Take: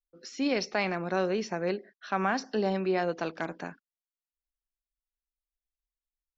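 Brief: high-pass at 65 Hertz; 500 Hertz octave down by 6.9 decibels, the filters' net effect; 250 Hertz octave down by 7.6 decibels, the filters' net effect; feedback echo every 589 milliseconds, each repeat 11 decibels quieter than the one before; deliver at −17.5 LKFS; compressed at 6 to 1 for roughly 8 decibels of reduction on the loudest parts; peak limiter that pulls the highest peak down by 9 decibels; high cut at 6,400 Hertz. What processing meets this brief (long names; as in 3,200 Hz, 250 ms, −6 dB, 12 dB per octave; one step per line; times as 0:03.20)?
high-pass filter 65 Hz
low-pass filter 6,400 Hz
parametric band 250 Hz −9 dB
parametric band 500 Hz −6 dB
downward compressor 6 to 1, threshold −34 dBFS
brickwall limiter −29 dBFS
repeating echo 589 ms, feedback 28%, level −11 dB
level +23.5 dB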